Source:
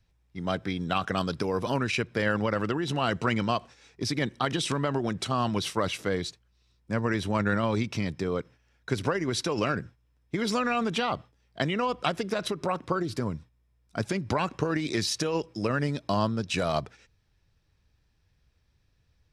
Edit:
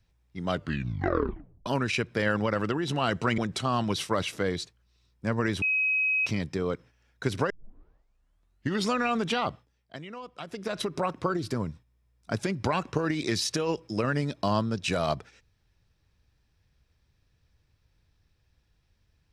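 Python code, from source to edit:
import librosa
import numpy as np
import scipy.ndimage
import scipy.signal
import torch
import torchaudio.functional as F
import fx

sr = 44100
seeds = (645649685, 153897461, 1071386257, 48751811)

y = fx.edit(x, sr, fx.tape_stop(start_s=0.49, length_s=1.17),
    fx.cut(start_s=3.38, length_s=1.66),
    fx.bleep(start_s=7.28, length_s=0.64, hz=2540.0, db=-22.5),
    fx.tape_start(start_s=9.16, length_s=1.39),
    fx.fade_down_up(start_s=11.16, length_s=1.35, db=-13.5, fade_s=0.43), tone=tone)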